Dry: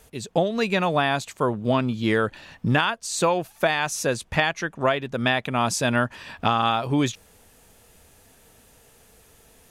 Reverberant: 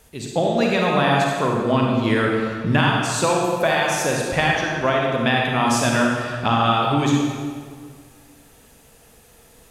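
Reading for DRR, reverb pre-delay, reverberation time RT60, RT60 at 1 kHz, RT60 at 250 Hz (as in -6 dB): -1.5 dB, 35 ms, 1.8 s, 1.8 s, 2.0 s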